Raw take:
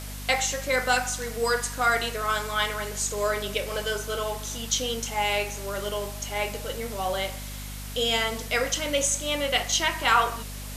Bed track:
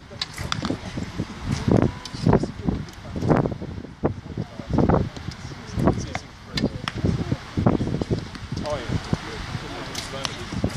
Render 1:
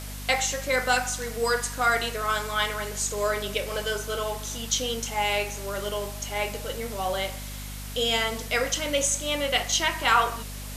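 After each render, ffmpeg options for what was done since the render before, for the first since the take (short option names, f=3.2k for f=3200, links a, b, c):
-af anull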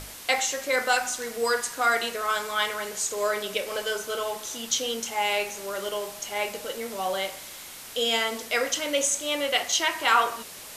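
-af "bandreject=f=50:t=h:w=6,bandreject=f=100:t=h:w=6,bandreject=f=150:t=h:w=6,bandreject=f=200:t=h:w=6,bandreject=f=250:t=h:w=6"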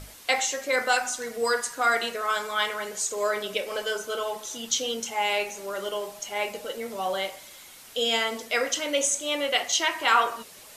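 -af "afftdn=nr=7:nf=-42"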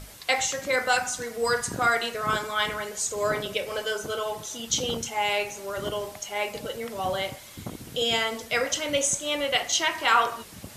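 -filter_complex "[1:a]volume=-18.5dB[a];[0:a][a]amix=inputs=2:normalize=0"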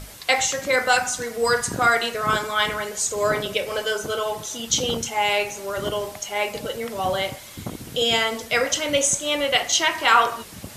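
-af "volume=4.5dB"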